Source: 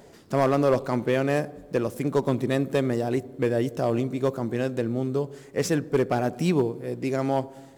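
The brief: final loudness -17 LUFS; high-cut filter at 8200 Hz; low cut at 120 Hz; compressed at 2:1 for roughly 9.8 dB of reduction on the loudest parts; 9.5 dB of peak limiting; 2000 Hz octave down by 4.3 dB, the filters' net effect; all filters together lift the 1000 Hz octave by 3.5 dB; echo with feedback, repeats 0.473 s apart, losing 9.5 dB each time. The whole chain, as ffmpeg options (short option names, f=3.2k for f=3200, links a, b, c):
-af "highpass=120,lowpass=8.2k,equalizer=f=1k:t=o:g=6.5,equalizer=f=2k:t=o:g=-8,acompressor=threshold=-34dB:ratio=2,alimiter=level_in=2dB:limit=-24dB:level=0:latency=1,volume=-2dB,aecho=1:1:473|946|1419|1892:0.335|0.111|0.0365|0.012,volume=19.5dB"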